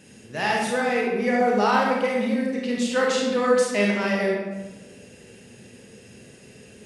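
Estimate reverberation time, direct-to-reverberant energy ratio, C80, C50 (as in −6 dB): 1.2 s, −3.0 dB, 3.0 dB, 0.0 dB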